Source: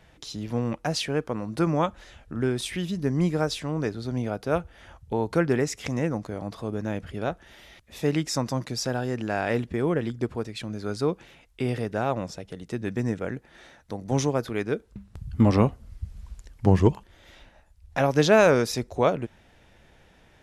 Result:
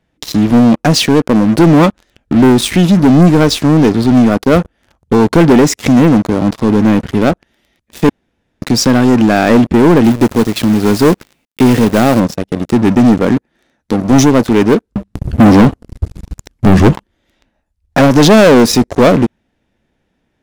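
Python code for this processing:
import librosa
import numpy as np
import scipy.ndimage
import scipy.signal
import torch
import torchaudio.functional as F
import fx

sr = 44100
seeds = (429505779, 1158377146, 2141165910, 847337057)

y = fx.quant_companded(x, sr, bits=4, at=(10.04, 12.2))
y = fx.edit(y, sr, fx.room_tone_fill(start_s=8.09, length_s=0.53), tone=tone)
y = fx.peak_eq(y, sr, hz=250.0, db=10.0, octaves=1.2)
y = fx.leveller(y, sr, passes=5)
y = F.gain(torch.from_numpy(y), -1.0).numpy()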